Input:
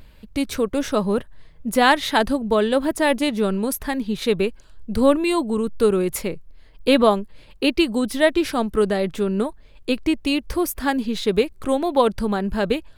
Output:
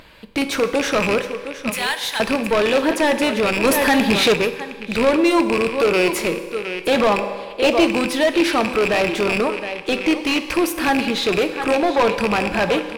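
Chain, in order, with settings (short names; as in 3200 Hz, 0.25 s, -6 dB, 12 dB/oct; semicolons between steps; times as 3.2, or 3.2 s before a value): rattling part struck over -27 dBFS, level -11 dBFS; 1.7–2.2 differentiator; echo 0.714 s -16 dB; in parallel at -11 dB: wavefolder -14.5 dBFS; on the sum: overdrive pedal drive 25 dB, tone 3200 Hz, clips at -1 dBFS; on a send at -8 dB: reverb RT60 1.5 s, pre-delay 3 ms; 3.64–4.34 on the sum: sample leveller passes 2; 7.19–7.87 bell 630 Hz +10 dB 0.51 oct; gain -8 dB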